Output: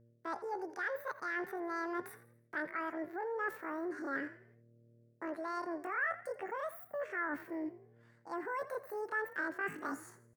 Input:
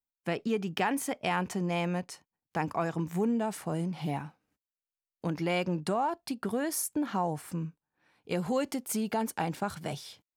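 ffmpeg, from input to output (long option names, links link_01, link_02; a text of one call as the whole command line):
ffmpeg -i in.wav -filter_complex "[0:a]aeval=exprs='val(0)+0.000562*(sin(2*PI*60*n/s)+sin(2*PI*2*60*n/s)/2+sin(2*PI*3*60*n/s)/3+sin(2*PI*4*60*n/s)/4+sin(2*PI*5*60*n/s)/5)':channel_layout=same,areverse,acompressor=threshold=-38dB:ratio=16,areverse,asetrate=85689,aresample=44100,atempo=0.514651,highshelf=frequency=2400:width_type=q:width=3:gain=-10,asplit=5[link_01][link_02][link_03][link_04][link_05];[link_02]adelay=83,afreqshift=39,volume=-16dB[link_06];[link_03]adelay=166,afreqshift=78,volume=-23.3dB[link_07];[link_04]adelay=249,afreqshift=117,volume=-30.7dB[link_08];[link_05]adelay=332,afreqshift=156,volume=-38dB[link_09];[link_01][link_06][link_07][link_08][link_09]amix=inputs=5:normalize=0,volume=1.5dB" out.wav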